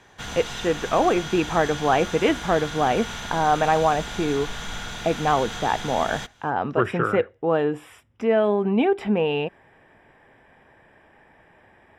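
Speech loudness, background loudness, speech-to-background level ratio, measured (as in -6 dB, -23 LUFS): -23.0 LUFS, -33.0 LUFS, 10.0 dB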